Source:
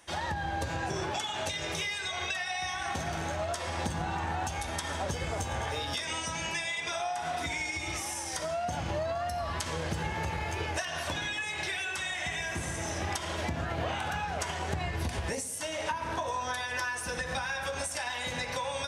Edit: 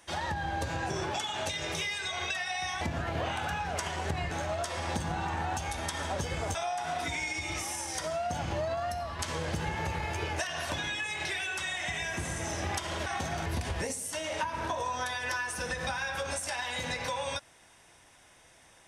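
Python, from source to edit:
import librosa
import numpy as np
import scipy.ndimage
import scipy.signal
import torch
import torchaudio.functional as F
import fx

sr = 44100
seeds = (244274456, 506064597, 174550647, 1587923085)

y = fx.edit(x, sr, fx.swap(start_s=2.81, length_s=0.4, other_s=13.44, other_length_s=1.5),
    fx.cut(start_s=5.45, length_s=1.48),
    fx.fade_out_to(start_s=9.26, length_s=0.31, floor_db=-6.0), tone=tone)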